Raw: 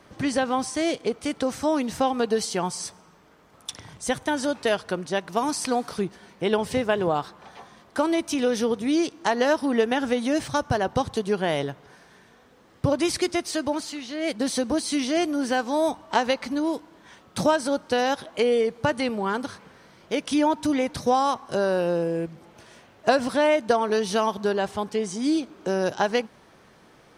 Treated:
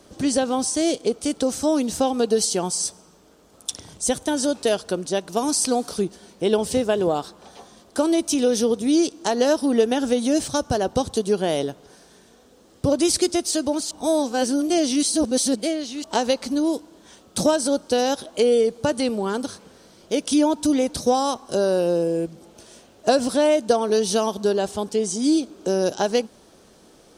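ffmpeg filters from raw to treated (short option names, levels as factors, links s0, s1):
-filter_complex "[0:a]asplit=3[s0][s1][s2];[s0]atrim=end=13.912[s3];[s1]atrim=start=13.908:end=16.042,asetpts=PTS-STARTPTS,areverse[s4];[s2]atrim=start=16.038[s5];[s3][s4]acrossfade=d=0.004:c1=hsin:c2=hsin[s6];[s6][s5]acrossfade=d=0.004:c1=hsin:c2=hsin,equalizer=f=125:t=o:w=1:g=-9,equalizer=f=1000:t=o:w=1:g=-7,equalizer=f=2000:t=o:w=1:g=-11,equalizer=f=8000:t=o:w=1:g=5,acontrast=48"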